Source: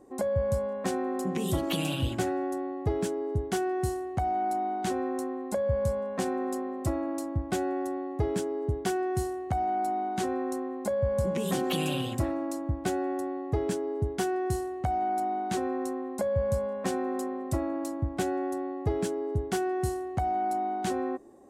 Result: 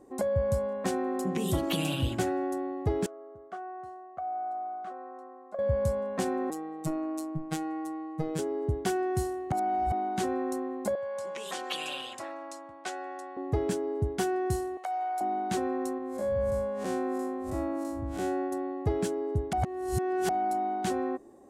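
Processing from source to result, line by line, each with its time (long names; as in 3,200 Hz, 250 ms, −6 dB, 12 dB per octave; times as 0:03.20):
0:03.06–0:05.59: pair of resonant band-passes 900 Hz, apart 0.78 octaves
0:06.50–0:08.39: phases set to zero 158 Hz
0:09.52–0:09.92: reverse
0:10.95–0:13.37: band-pass filter 770–7,500 Hz
0:14.77–0:15.21: Bessel high-pass filter 730 Hz, order 6
0:15.98–0:18.52: spectrum smeared in time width 115 ms
0:19.53–0:20.29: reverse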